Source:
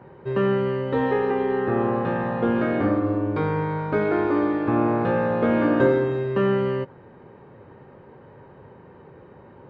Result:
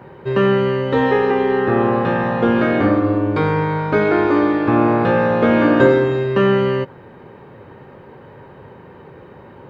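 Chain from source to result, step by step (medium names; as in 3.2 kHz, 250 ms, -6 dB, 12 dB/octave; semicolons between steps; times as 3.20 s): treble shelf 2.5 kHz +8.5 dB; trim +6 dB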